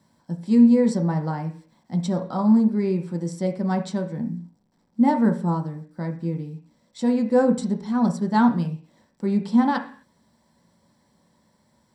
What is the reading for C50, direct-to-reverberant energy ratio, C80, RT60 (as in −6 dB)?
11.5 dB, 2.5 dB, 16.0 dB, 0.45 s